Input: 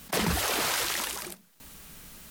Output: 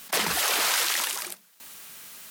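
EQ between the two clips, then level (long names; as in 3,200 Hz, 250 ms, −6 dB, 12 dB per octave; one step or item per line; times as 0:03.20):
high-pass filter 930 Hz 6 dB per octave
+5.0 dB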